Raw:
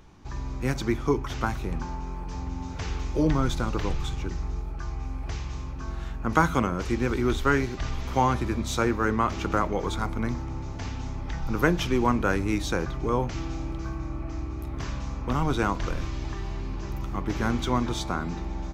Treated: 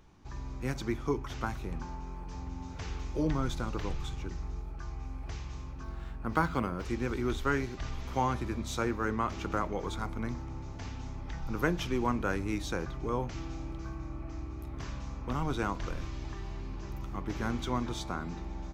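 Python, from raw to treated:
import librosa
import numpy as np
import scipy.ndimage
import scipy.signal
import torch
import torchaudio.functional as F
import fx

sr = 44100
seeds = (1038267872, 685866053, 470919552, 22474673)

y = fx.resample_linear(x, sr, factor=4, at=(5.83, 6.85))
y = y * 10.0 ** (-7.0 / 20.0)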